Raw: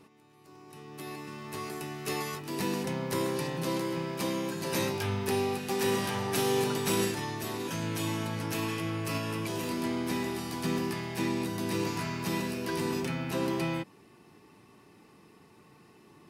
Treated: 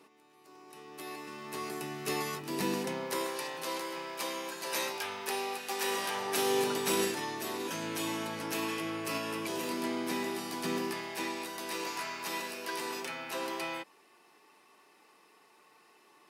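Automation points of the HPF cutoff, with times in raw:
1.15 s 340 Hz
1.92 s 160 Hz
2.66 s 160 Hz
3.33 s 610 Hz
5.82 s 610 Hz
6.63 s 280 Hz
10.8 s 280 Hz
11.42 s 590 Hz

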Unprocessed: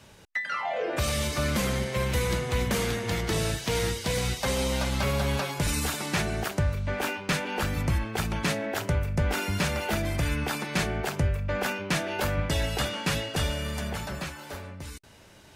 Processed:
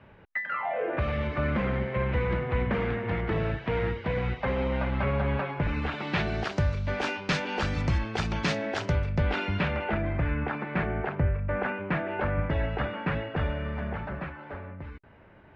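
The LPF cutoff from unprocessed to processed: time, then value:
LPF 24 dB/oct
5.7 s 2300 Hz
6.6 s 5700 Hz
8.84 s 5700 Hz
10.05 s 2100 Hz

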